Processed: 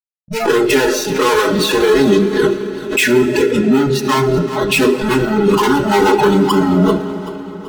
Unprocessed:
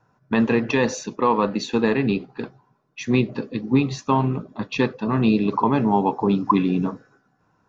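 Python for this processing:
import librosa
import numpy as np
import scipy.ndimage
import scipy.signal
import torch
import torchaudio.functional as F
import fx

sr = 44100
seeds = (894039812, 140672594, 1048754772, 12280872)

p1 = fx.recorder_agc(x, sr, target_db=-9.0, rise_db_per_s=18.0, max_gain_db=30)
p2 = fx.lowpass(p1, sr, hz=3800.0, slope=6)
p3 = fx.hum_notches(p2, sr, base_hz=50, count=8)
p4 = fx.env_lowpass_down(p3, sr, base_hz=1700.0, full_db=-14.0)
p5 = fx.fuzz(p4, sr, gain_db=37.0, gate_db=-40.0)
p6 = p5 + 0.91 * np.pad(p5, (int(4.7 * sr / 1000.0), 0))[:len(p5)]
p7 = fx.noise_reduce_blind(p6, sr, reduce_db=29)
p8 = fx.small_body(p7, sr, hz=(350.0, 1400.0), ring_ms=40, db=10)
p9 = p8 + fx.echo_feedback(p8, sr, ms=385, feedback_pct=49, wet_db=-15.0, dry=0)
p10 = fx.rev_freeverb(p9, sr, rt60_s=4.2, hf_ratio=0.85, predelay_ms=5, drr_db=11.0)
p11 = fx.pre_swell(p10, sr, db_per_s=95.0)
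y = F.gain(torch.from_numpy(p11), -1.5).numpy()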